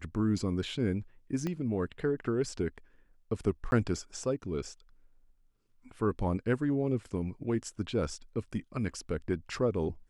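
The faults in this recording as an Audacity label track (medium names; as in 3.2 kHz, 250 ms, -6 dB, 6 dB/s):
1.470000	1.470000	pop -21 dBFS
3.710000	3.720000	dropout 11 ms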